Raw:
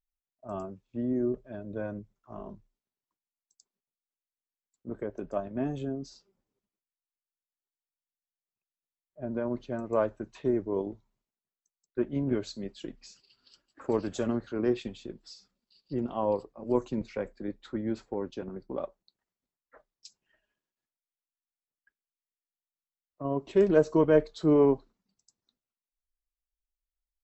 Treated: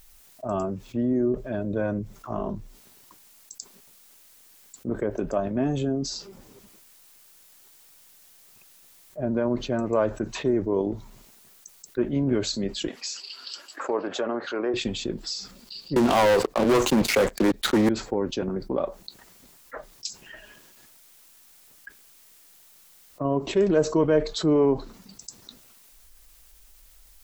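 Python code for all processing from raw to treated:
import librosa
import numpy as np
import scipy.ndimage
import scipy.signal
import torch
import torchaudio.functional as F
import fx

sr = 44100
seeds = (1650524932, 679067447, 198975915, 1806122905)

y = fx.chain(x, sr, fx.highpass(hz=550.0, slope=12),
    fx.env_lowpass_down(base_hz=1400.0, full_db=-33.0), at=(12.88, 14.74))
y = fx.chain(y, sr, fx.low_shelf(hz=230.0, db=-8.5),
    fx.leveller(passes=5),
    fx.band_squash(depth_pct=40), at=(15.96, 17.89))
y = fx.high_shelf(y, sr, hz=5200.0, db=6.0)
y = fx.env_flatten(y, sr, amount_pct=50)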